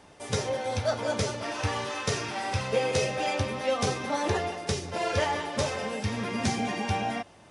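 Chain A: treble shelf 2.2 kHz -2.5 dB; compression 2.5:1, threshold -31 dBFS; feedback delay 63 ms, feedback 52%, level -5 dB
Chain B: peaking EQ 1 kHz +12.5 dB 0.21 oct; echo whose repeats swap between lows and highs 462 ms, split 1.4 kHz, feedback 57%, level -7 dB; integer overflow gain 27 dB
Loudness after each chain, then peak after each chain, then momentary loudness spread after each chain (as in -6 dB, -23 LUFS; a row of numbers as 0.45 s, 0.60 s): -32.5 LUFS, -30.0 LUFS; -18.0 dBFS, -27.0 dBFS; 2 LU, 1 LU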